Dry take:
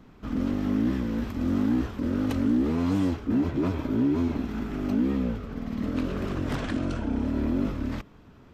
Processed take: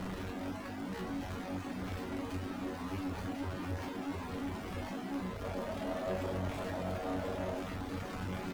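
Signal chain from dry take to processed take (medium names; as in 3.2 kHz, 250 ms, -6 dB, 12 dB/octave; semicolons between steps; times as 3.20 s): one-bit comparator; treble shelf 3.6 kHz -11 dB; feedback comb 93 Hz, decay 0.59 s, harmonics all, mix 90%; delay 1045 ms -5.5 dB; reverb removal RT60 0.63 s; 5.43–7.60 s: peaking EQ 610 Hz +14 dB 0.48 oct; one-sided clip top -38.5 dBFS; trim +1 dB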